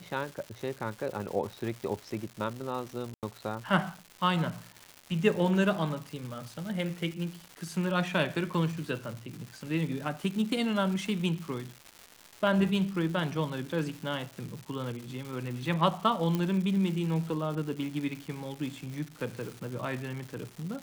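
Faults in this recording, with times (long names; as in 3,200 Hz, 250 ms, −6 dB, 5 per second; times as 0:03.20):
surface crackle 370 per second −37 dBFS
0:03.14–0:03.23: drop-out 88 ms
0:16.35: click −17 dBFS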